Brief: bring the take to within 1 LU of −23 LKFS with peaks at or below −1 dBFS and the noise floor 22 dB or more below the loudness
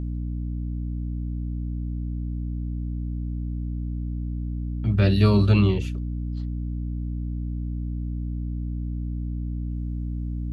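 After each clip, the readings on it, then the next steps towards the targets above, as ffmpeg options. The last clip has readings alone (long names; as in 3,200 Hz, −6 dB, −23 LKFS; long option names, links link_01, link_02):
mains hum 60 Hz; hum harmonics up to 300 Hz; level of the hum −26 dBFS; integrated loudness −27.5 LKFS; sample peak −6.5 dBFS; target loudness −23.0 LKFS
→ -af "bandreject=frequency=60:width_type=h:width=4,bandreject=frequency=120:width_type=h:width=4,bandreject=frequency=180:width_type=h:width=4,bandreject=frequency=240:width_type=h:width=4,bandreject=frequency=300:width_type=h:width=4"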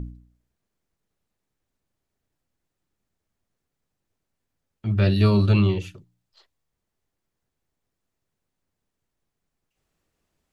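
mains hum none found; integrated loudness −20.5 LKFS; sample peak −7.5 dBFS; target loudness −23.0 LKFS
→ -af "volume=-2.5dB"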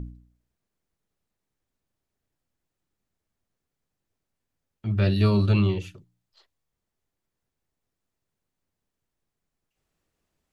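integrated loudness −23.0 LKFS; sample peak −10.0 dBFS; background noise floor −84 dBFS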